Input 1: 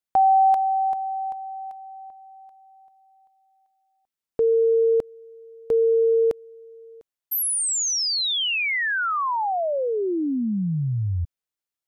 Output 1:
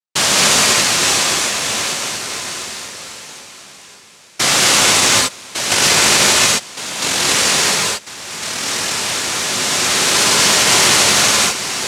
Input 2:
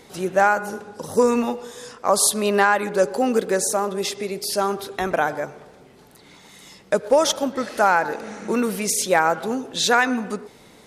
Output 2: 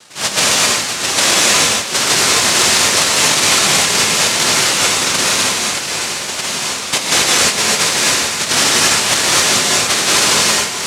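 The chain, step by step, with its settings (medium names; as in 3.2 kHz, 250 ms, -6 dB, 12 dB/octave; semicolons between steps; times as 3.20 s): low-pass 1.2 kHz; tilt EQ -3.5 dB/octave; ever faster or slower copies 617 ms, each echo -2 st, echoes 3, each echo -6 dB; noise-vocoded speech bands 1; gated-style reverb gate 290 ms rising, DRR -4 dB; peak limiter -2 dBFS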